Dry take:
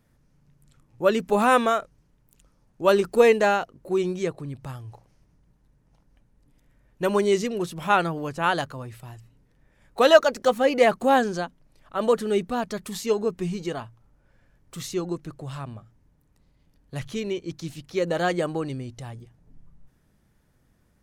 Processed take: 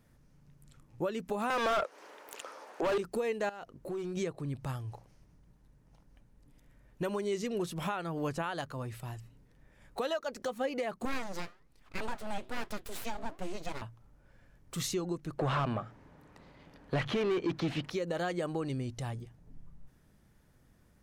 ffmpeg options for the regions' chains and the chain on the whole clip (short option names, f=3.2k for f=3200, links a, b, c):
-filter_complex "[0:a]asettb=1/sr,asplit=3[a][b][c];[a]atrim=end=1.504[d];[b]atrim=start=1.5:end=2.98,asetpts=PTS-STARTPTS,afade=t=in:d=0.004:c=qsin,afade=t=out:st=1.476:d=0.004:c=qsin,highpass=f=400:w=0.5412,highpass=f=400:w=1.3066,asplit=2[e][f];[f]highpass=f=720:p=1,volume=36dB,asoftclip=type=tanh:threshold=-6dB[g];[e][g]amix=inputs=2:normalize=0,lowpass=f=1.6k:p=1,volume=-6dB[h];[c]atrim=start=2.976[i];[d][h]acrossfade=d=0.004:c1=hsin:c2=qsin[j];[j][i]acrossfade=d=0.004:c1=qsin:c2=hsin,asettb=1/sr,asplit=3[k][l][m];[k]atrim=end=3.494[n];[l]atrim=start=3.49:end=4.17,asetpts=PTS-STARTPTS,afade=t=in:d=0.004:c=qsin,afade=t=out:st=0.676:d=0.004:c=qsin,acompressor=threshold=-33dB:ratio=10:attack=3.2:release=140:knee=1:detection=peak,aeval=exprs='clip(val(0),-1,0.0224)':c=same[o];[m]atrim=start=4.166[p];[n][o]acrossfade=d=0.004:c1=hsin:c2=qsin[q];[q][p]acrossfade=d=0.004:c1=qsin:c2=hsin,asettb=1/sr,asplit=3[r][s][t];[r]atrim=end=11.054[u];[s]atrim=start=11.05:end=13.82,asetpts=PTS-STARTPTS,afade=t=in:d=0.004:c=qsin,afade=t=out:st=2.766:d=0.004:c=qsin,bandreject=f=590:w=5.4,flanger=delay=3.9:depth=6.2:regen=-84:speed=1.2:shape=sinusoidal,aeval=exprs='abs(val(0))':c=same[v];[t]atrim=start=13.816[w];[u][v]acrossfade=d=0.004:c1=hsin:c2=qsin[x];[x][w]acrossfade=d=0.004:c1=qsin:c2=hsin,asettb=1/sr,asplit=3[y][z][aa];[y]atrim=end=15.384[ab];[z]atrim=start=15.38:end=17.9,asetpts=PTS-STARTPTS,afade=t=in:d=0.004:c=qsin,afade=t=out:st=2.516:d=0.004:c=qsin,acrossover=split=4100[ac][ad];[ad]acompressor=threshold=-59dB:ratio=4:attack=1:release=60[ae];[ac][ae]amix=inputs=2:normalize=0,highshelf=f=5.2k:g=-6.5,asplit=2[af][ag];[ag]highpass=f=720:p=1,volume=26dB,asoftclip=type=tanh:threshold=-17.5dB[ah];[af][ah]amix=inputs=2:normalize=0,lowpass=f=1.7k:p=1,volume=-6dB[ai];[aa]atrim=start=17.896[aj];[ab][ai]acrossfade=d=0.004:c1=hsin:c2=qsin[ak];[ak][aj]acrossfade=d=0.004:c1=qsin:c2=hsin,acompressor=threshold=-26dB:ratio=4,alimiter=limit=-24dB:level=0:latency=1:release=453"